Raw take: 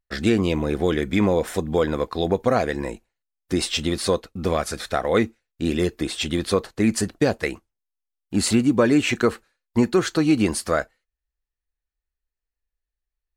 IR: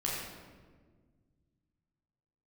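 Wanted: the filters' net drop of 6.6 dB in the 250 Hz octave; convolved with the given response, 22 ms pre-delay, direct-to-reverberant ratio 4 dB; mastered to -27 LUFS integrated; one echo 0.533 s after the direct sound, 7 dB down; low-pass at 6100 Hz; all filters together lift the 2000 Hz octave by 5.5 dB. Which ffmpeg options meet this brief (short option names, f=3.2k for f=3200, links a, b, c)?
-filter_complex "[0:a]lowpass=6.1k,equalizer=f=250:t=o:g=-9,equalizer=f=2k:t=o:g=7,aecho=1:1:533:0.447,asplit=2[a][b];[1:a]atrim=start_sample=2205,adelay=22[c];[b][c]afir=irnorm=-1:irlink=0,volume=-9.5dB[d];[a][d]amix=inputs=2:normalize=0,volume=-4.5dB"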